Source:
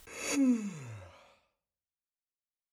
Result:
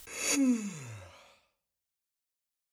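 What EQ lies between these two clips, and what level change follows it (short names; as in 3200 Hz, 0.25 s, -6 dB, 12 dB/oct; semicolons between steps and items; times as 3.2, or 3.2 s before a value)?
high shelf 2700 Hz +8 dB; 0.0 dB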